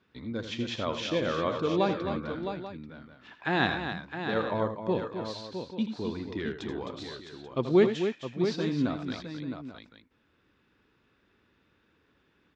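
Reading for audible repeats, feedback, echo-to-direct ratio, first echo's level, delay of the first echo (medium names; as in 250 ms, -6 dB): 4, no regular repeats, -3.5 dB, -10.0 dB, 82 ms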